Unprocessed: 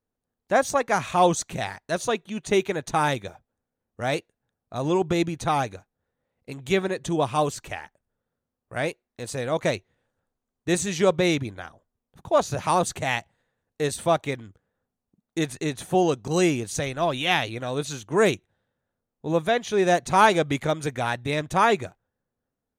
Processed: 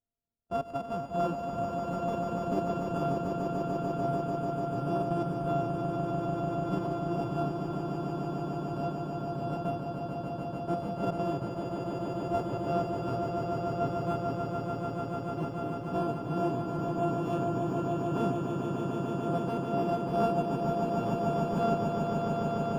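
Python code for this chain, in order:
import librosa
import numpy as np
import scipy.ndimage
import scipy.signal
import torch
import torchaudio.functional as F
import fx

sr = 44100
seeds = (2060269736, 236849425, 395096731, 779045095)

y = np.r_[np.sort(x[:len(x) // 64 * 64].reshape(-1, 64), axis=1).ravel(), x[len(x) // 64 * 64:]]
y = scipy.signal.lfilter(np.full(22, 1.0 / 22), 1.0, y)
y = fx.echo_swell(y, sr, ms=147, loudest=8, wet_db=-6.0)
y = y * 10.0 ** (-8.5 / 20.0)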